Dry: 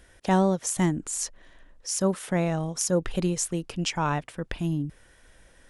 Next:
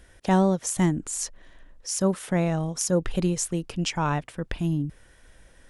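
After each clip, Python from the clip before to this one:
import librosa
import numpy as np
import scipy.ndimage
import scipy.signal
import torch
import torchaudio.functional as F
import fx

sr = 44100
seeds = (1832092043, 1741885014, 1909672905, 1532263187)

y = fx.low_shelf(x, sr, hz=210.0, db=3.5)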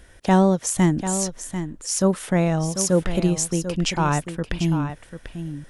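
y = x + 10.0 ** (-10.0 / 20.0) * np.pad(x, (int(743 * sr / 1000.0), 0))[:len(x)]
y = y * librosa.db_to_amplitude(4.0)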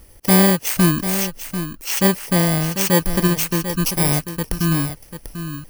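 y = fx.bit_reversed(x, sr, seeds[0], block=32)
y = y * librosa.db_to_amplitude(3.0)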